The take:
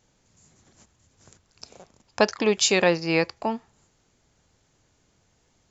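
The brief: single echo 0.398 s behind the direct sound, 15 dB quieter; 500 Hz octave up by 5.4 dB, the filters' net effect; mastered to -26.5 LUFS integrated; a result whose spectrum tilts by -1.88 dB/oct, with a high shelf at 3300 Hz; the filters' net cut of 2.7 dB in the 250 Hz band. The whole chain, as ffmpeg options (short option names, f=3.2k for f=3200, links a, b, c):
-af "equalizer=f=250:t=o:g=-8.5,equalizer=f=500:t=o:g=8.5,highshelf=f=3.3k:g=6,aecho=1:1:398:0.178,volume=-8dB"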